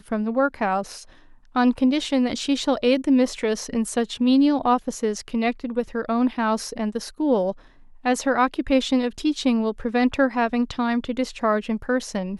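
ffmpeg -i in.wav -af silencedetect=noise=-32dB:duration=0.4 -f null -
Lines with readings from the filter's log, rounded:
silence_start: 1.03
silence_end: 1.56 | silence_duration: 0.53
silence_start: 7.52
silence_end: 8.05 | silence_duration: 0.53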